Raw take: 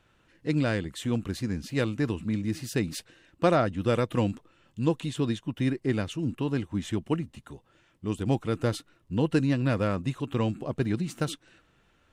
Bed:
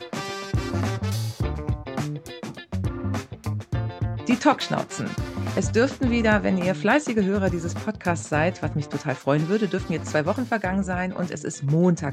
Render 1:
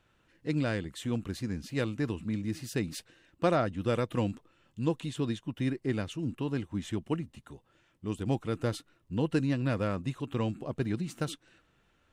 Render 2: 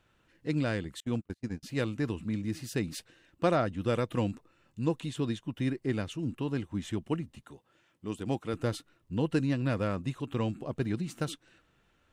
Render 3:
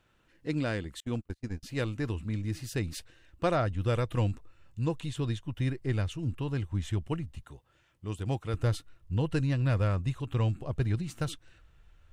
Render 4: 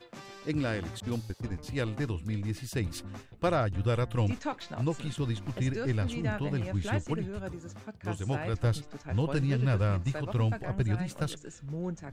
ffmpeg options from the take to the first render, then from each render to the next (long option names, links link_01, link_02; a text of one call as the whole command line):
ffmpeg -i in.wav -af "volume=-4dB" out.wav
ffmpeg -i in.wav -filter_complex "[0:a]asettb=1/sr,asplit=3[link_01][link_02][link_03];[link_01]atrim=end=1.004[link_04];[link_02]atrim=start=1:end=1.63,asetpts=PTS-STARTPTS,afade=type=in:duration=0.004:curve=qsin,afade=type=out:start_time=0.626:duration=0.004:curve=qsin,agate=range=-37dB:threshold=-34dB:ratio=16:release=100:detection=peak[link_05];[link_03]atrim=start=1.626[link_06];[link_04][link_05]acrossfade=duration=0.004:curve1=hsin:curve2=qsin[link_07];[link_07][link_06]acrossfade=duration=0.004:curve1=qsin:curve2=hsin,asettb=1/sr,asplit=3[link_08][link_09][link_10];[link_08]atrim=end=4.314[link_11];[link_09]atrim=start=4.31:end=4.96,asetpts=PTS-STARTPTS,afade=type=in:duration=0.004:curve=qsin,afade=type=out:start_time=0.646:duration=0.004:curve=qsin,bandreject=frequency=3200:width=6.2[link_12];[link_10]atrim=start=4.956[link_13];[link_11][link_12]acrossfade=duration=0.004:curve1=hsin:curve2=qsin[link_14];[link_14][link_13]acrossfade=duration=0.004:curve1=qsin:curve2=hsin,asettb=1/sr,asplit=3[link_15][link_16][link_17];[link_15]atrim=end=7.434[link_18];[link_16]atrim=start=7.43:end=8.54,asetpts=PTS-STARTPTS,afade=type=in:duration=0.004:curve=qsin,afade=type=out:start_time=1.106:duration=0.004:curve=qsin,highpass=frequency=170:poles=1[link_19];[link_17]atrim=start=8.536[link_20];[link_18][link_19]acrossfade=duration=0.004:curve1=hsin:curve2=qsin[link_21];[link_21][link_20]acrossfade=duration=0.004:curve1=qsin:curve2=hsin" out.wav
ffmpeg -i in.wav -af "asubboost=boost=10.5:cutoff=71" out.wav
ffmpeg -i in.wav -i bed.wav -filter_complex "[1:a]volume=-16dB[link_01];[0:a][link_01]amix=inputs=2:normalize=0" out.wav